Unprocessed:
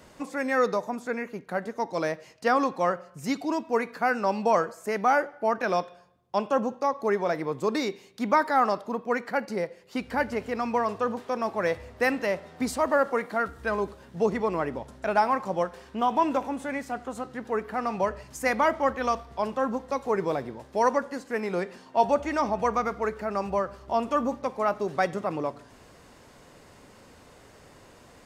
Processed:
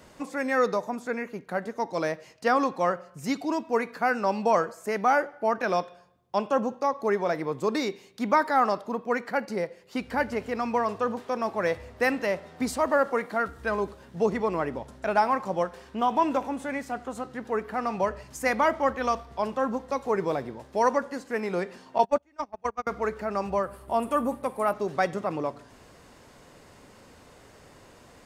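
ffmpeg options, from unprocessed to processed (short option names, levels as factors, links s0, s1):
-filter_complex "[0:a]asettb=1/sr,asplit=3[s0][s1][s2];[s0]atrim=end=21.984[s3];[s1]atrim=start=21.98:end=22.87,asetpts=PTS-STARTPTS,afade=t=in:d=0.004:c=qsin,afade=t=out:st=0.886:d=0.004:c=qsin,agate=range=0.0224:threshold=0.0708:ratio=16:release=100:detection=peak[s4];[s2]atrim=start=22.866[s5];[s3][s4]acrossfade=d=0.004:c1=hsin:c2=qsin[s6];[s6][s5]acrossfade=d=0.004:c1=qsin:c2=hsin,asettb=1/sr,asplit=3[s7][s8][s9];[s7]atrim=end=23.634[s10];[s8]atrim=start=23.63:end=24.73,asetpts=PTS-STARTPTS,afade=t=in:d=0.004:c=qsin,afade=t=out:st=1.096:d=0.004:c=qsin,highshelf=f=7700:t=q:w=3:g=10[s11];[s9]atrim=start=24.726[s12];[s10][s11]acrossfade=d=0.004:c1=hsin:c2=qsin[s13];[s13][s12]acrossfade=d=0.004:c1=qsin:c2=hsin"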